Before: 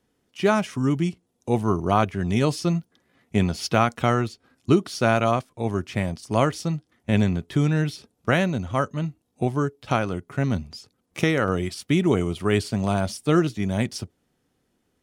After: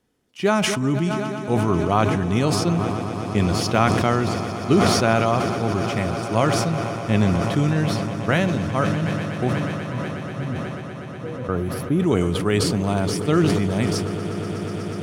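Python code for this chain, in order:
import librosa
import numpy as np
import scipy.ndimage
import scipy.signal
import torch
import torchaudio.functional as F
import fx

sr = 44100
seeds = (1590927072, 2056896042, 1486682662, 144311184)

p1 = fx.spec_box(x, sr, start_s=11.03, length_s=0.97, low_hz=1700.0, high_hz=9800.0, gain_db=-17)
p2 = fx.octave_resonator(p1, sr, note='B', decay_s=0.15, at=(9.53, 11.49))
p3 = p2 + fx.echo_swell(p2, sr, ms=122, loudest=8, wet_db=-17.0, dry=0)
y = fx.sustainer(p3, sr, db_per_s=24.0)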